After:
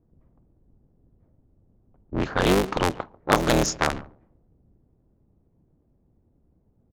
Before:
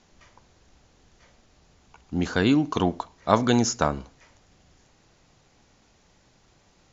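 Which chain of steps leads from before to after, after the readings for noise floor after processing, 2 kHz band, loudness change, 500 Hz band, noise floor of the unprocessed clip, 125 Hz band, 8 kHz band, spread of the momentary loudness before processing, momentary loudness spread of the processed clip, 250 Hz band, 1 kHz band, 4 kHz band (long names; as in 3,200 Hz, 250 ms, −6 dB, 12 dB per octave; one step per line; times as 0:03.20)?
−66 dBFS, +4.0 dB, 0.0 dB, +2.0 dB, −62 dBFS, −0.5 dB, can't be measured, 12 LU, 13 LU, −3.0 dB, +1.0 dB, +2.0 dB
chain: sub-harmonics by changed cycles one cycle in 3, inverted
repeating echo 143 ms, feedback 19%, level −21 dB
low-pass that shuts in the quiet parts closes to 310 Hz, open at −17 dBFS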